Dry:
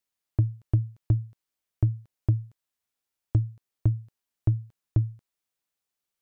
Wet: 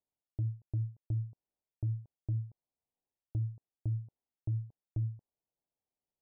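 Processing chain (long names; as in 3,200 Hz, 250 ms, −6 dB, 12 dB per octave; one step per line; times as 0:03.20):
Butterworth low-pass 890 Hz 36 dB per octave
reversed playback
downward compressor 12 to 1, threshold −31 dBFS, peak gain reduction 15 dB
reversed playback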